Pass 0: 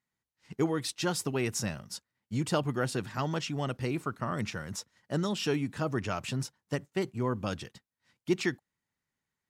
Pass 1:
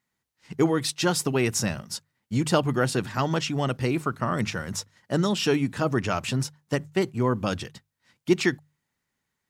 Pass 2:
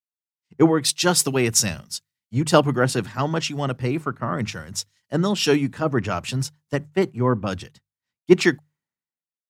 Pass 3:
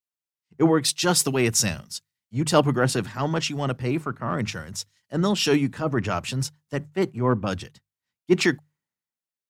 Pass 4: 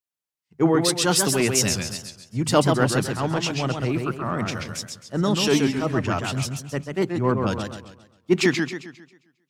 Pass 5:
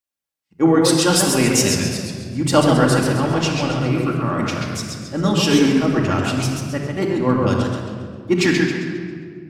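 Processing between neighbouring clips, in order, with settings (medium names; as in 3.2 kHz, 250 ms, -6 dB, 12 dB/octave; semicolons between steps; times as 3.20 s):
hum notches 50/100/150 Hz; trim +7 dB
three bands expanded up and down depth 100%; trim +2.5 dB
transient shaper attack -6 dB, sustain 0 dB
modulated delay 134 ms, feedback 41%, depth 166 cents, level -5 dB
simulated room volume 3300 m³, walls mixed, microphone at 2.3 m; trim +1 dB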